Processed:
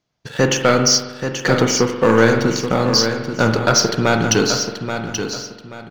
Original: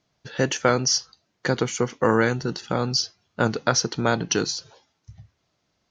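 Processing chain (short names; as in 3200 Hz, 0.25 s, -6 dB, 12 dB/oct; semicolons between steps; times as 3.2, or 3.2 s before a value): sample leveller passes 2; feedback echo 0.831 s, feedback 29%, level -8 dB; spring tank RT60 1.2 s, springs 44 ms, chirp 70 ms, DRR 5.5 dB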